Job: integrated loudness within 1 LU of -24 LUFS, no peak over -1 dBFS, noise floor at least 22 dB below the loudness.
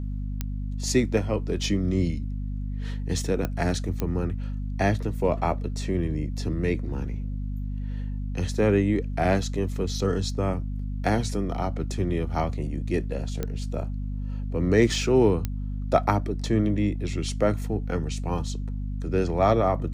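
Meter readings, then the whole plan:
clicks found 5; hum 50 Hz; highest harmonic 250 Hz; hum level -28 dBFS; loudness -27.0 LUFS; peak level -6.5 dBFS; loudness target -24.0 LUFS
-> de-click; hum notches 50/100/150/200/250 Hz; trim +3 dB

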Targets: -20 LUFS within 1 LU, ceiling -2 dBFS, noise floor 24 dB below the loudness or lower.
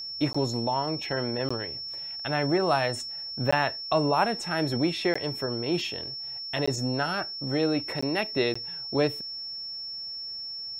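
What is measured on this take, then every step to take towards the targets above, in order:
dropouts 7; longest dropout 15 ms; steady tone 5.4 kHz; tone level -34 dBFS; loudness -28.0 LUFS; peak level -10.5 dBFS; loudness target -20.0 LUFS
-> interpolate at 0.33/1.49/3.51/5.14/6.66/8.01/8.54 s, 15 ms; band-stop 5.4 kHz, Q 30; trim +8 dB

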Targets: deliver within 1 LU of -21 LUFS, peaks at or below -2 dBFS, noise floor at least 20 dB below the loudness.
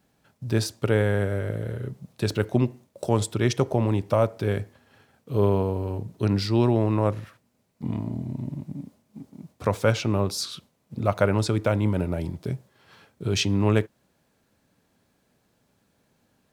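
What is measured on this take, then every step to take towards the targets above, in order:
loudness -25.5 LUFS; peak level -5.5 dBFS; loudness target -21.0 LUFS
-> trim +4.5 dB; peak limiter -2 dBFS

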